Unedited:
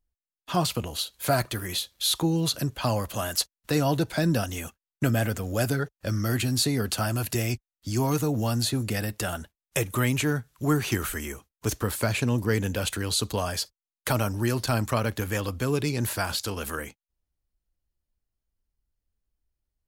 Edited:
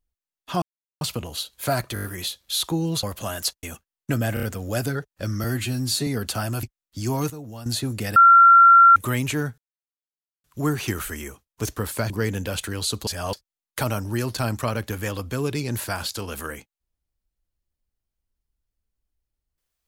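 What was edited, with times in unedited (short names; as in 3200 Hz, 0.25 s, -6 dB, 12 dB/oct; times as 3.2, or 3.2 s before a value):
0.62 insert silence 0.39 s
1.55 stutter 0.02 s, 6 plays
2.54–2.96 cut
3.56–4.56 cut
5.27 stutter 0.03 s, 4 plays
6.28–6.7 stretch 1.5×
7.26–7.53 cut
8.2–8.56 gain -11.5 dB
9.06–9.86 bleep 1370 Hz -8 dBFS
10.48 insert silence 0.86 s
12.14–12.39 cut
13.36–13.62 reverse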